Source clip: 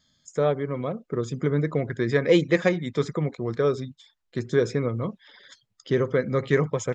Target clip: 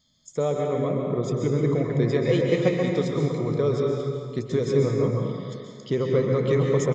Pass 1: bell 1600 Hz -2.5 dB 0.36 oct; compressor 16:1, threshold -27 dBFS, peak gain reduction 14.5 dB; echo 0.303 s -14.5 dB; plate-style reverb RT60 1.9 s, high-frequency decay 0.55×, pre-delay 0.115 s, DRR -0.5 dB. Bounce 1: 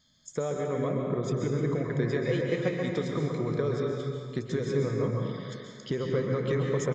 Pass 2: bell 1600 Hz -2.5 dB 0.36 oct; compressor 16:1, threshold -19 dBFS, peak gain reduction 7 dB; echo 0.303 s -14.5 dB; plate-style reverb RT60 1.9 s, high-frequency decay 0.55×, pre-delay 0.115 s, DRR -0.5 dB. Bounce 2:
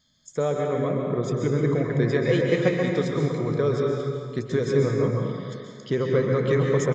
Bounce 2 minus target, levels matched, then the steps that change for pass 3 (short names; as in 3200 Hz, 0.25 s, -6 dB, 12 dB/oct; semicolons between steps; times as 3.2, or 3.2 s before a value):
2000 Hz band +4.0 dB
change: bell 1600 Hz -13 dB 0.36 oct